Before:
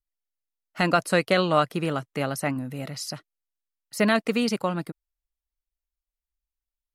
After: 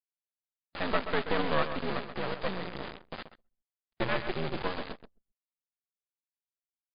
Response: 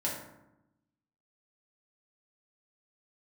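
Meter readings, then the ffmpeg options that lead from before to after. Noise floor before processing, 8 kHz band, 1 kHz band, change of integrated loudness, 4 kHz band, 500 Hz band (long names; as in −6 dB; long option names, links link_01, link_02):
below −85 dBFS, below −40 dB, −7.0 dB, −8.0 dB, −7.0 dB, −8.0 dB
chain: -af "aeval=exprs='val(0)+0.5*0.0531*sgn(val(0))':channel_layout=same,highpass=frequency=280:width_type=q:width=0.5412,highpass=frequency=280:width_type=q:width=1.307,lowpass=frequency=2000:width_type=q:width=0.5176,lowpass=frequency=2000:width_type=q:width=0.7071,lowpass=frequency=2000:width_type=q:width=1.932,afreqshift=-82,aresample=8000,acrusher=bits=2:mode=log:mix=0:aa=0.000001,aresample=44100,aeval=exprs='val(0)+0.00501*(sin(2*PI*60*n/s)+sin(2*PI*2*60*n/s)/2+sin(2*PI*3*60*n/s)/3+sin(2*PI*4*60*n/s)/4+sin(2*PI*5*60*n/s)/5)':channel_layout=same,flanger=delay=1.7:depth=8.2:regen=74:speed=0.83:shape=sinusoidal,acrusher=bits=3:dc=4:mix=0:aa=0.000001,aecho=1:1:131|262|393:0.316|0.098|0.0304,anlmdn=0.0158" -ar 11025 -c:a libmp3lame -b:a 48k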